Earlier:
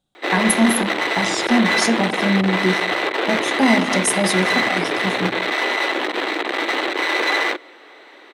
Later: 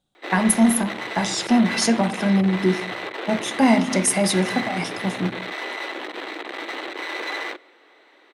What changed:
background -11.5 dB; reverb: on, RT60 1.6 s

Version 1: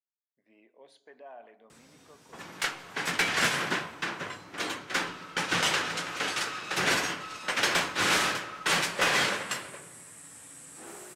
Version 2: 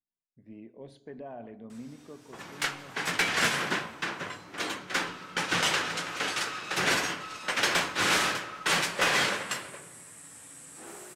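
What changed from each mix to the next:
speech: remove high-pass 730 Hz 12 dB/octave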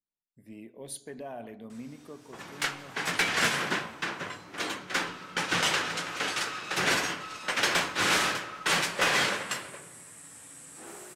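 speech: remove tape spacing loss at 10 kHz 31 dB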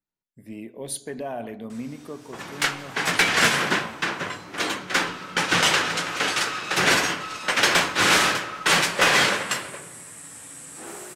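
speech +8.5 dB; background +7.0 dB

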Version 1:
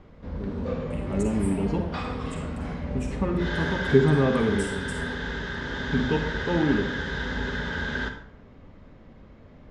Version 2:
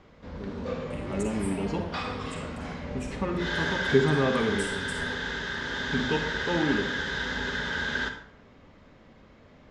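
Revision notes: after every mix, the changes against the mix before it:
background: add tilt EQ +2 dB/octave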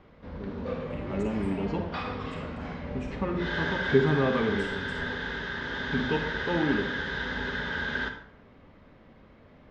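master: add distance through air 170 m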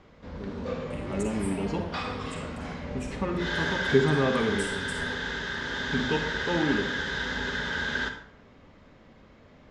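master: remove distance through air 170 m

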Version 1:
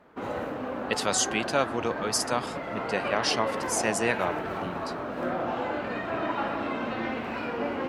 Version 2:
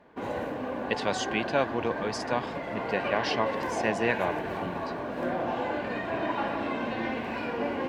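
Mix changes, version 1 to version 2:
speech: add low-pass 3.2 kHz 12 dB/octave; master: add Butterworth band-stop 1.3 kHz, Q 7

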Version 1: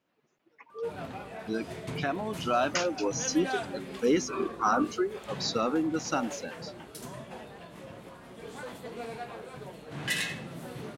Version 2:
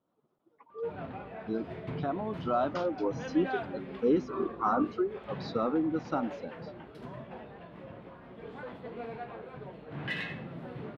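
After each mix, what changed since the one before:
speech: add high-order bell 2.1 kHz -12.5 dB 1 oct; master: add distance through air 400 m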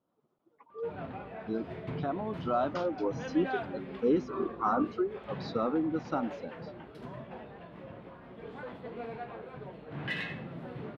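reverb: off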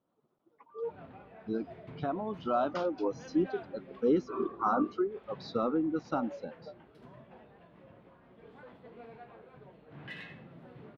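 background -9.5 dB

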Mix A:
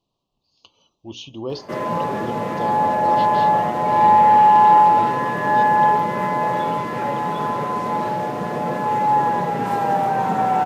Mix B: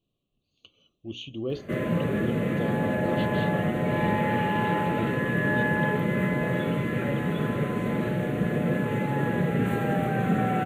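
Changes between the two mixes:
background: add bass shelf 150 Hz +10 dB; master: add static phaser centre 2.2 kHz, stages 4

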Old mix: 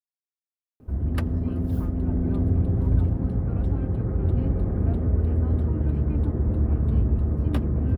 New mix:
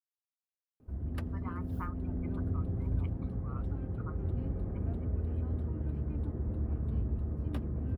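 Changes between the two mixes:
speech +9.0 dB; background -11.5 dB

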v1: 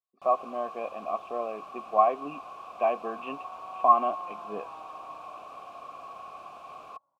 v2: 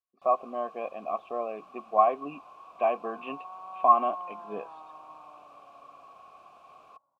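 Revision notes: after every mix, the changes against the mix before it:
first sound -8.5 dB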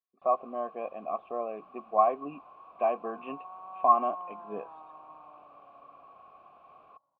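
master: add distance through air 420 m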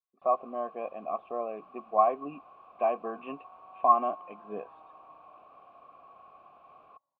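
second sound -8.0 dB

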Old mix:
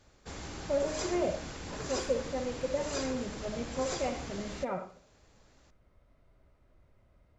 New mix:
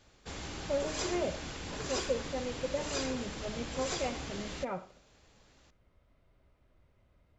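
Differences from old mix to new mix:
speech: send -9.0 dB; master: add peaking EQ 3.1 kHz +4.5 dB 1 oct

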